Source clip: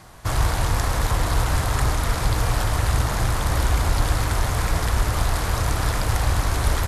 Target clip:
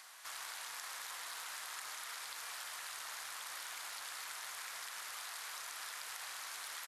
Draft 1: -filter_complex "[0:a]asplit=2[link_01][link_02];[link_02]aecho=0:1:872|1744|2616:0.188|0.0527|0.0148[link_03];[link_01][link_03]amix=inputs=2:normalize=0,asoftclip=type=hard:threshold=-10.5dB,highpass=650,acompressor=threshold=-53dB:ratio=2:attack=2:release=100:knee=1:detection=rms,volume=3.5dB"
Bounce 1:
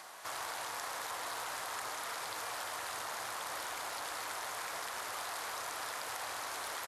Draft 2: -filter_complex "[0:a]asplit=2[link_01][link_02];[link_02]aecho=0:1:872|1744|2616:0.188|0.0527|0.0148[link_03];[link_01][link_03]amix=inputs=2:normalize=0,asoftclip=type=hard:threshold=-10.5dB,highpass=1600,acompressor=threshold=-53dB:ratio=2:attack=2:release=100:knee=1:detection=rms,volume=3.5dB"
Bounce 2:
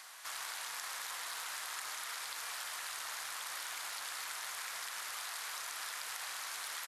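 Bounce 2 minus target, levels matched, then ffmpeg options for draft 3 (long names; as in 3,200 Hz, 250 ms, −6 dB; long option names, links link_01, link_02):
downward compressor: peak gain reduction −3.5 dB
-filter_complex "[0:a]asplit=2[link_01][link_02];[link_02]aecho=0:1:872|1744|2616:0.188|0.0527|0.0148[link_03];[link_01][link_03]amix=inputs=2:normalize=0,asoftclip=type=hard:threshold=-10.5dB,highpass=1600,acompressor=threshold=-60dB:ratio=2:attack=2:release=100:knee=1:detection=rms,volume=3.5dB"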